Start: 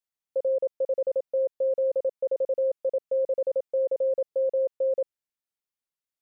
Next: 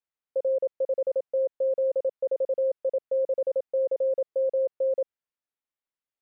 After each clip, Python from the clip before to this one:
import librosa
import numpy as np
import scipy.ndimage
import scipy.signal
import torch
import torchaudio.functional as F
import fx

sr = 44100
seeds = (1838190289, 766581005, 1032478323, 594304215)

y = fx.bass_treble(x, sr, bass_db=-3, treble_db=-14)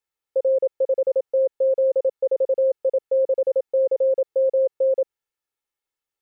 y = x + 0.54 * np.pad(x, (int(2.3 * sr / 1000.0), 0))[:len(x)]
y = y * librosa.db_to_amplitude(4.0)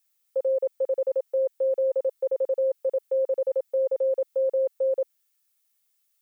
y = fx.tilt_eq(x, sr, slope=5.0)